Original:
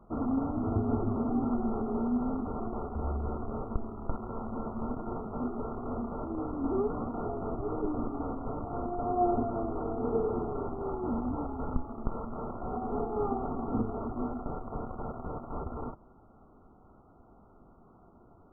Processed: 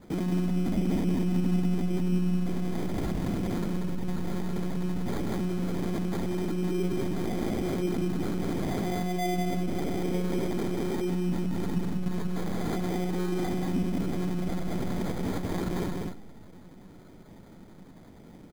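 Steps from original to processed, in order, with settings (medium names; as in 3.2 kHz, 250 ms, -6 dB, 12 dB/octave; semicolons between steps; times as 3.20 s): monotone LPC vocoder at 8 kHz 180 Hz; loudspeakers at several distances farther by 34 m -11 dB, 65 m -3 dB; on a send at -19 dB: reverberation RT60 1.4 s, pre-delay 25 ms; on the sum: sample-and-hold 16×; peaking EQ 220 Hz +12 dB 1.5 oct; in parallel at -0.5 dB: compressor with a negative ratio -29 dBFS, ratio -1; on the sum: trim -8.5 dB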